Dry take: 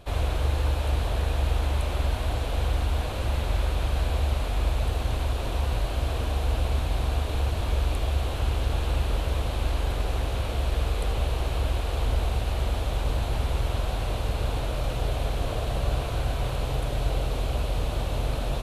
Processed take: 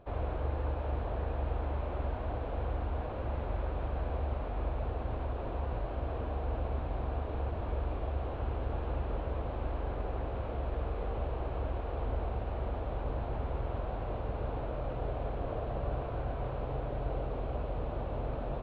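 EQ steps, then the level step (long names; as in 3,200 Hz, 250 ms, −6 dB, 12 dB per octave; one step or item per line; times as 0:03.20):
head-to-tape spacing loss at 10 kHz 44 dB
low-shelf EQ 190 Hz −10.5 dB
high-shelf EQ 2,700 Hz −11 dB
0.0 dB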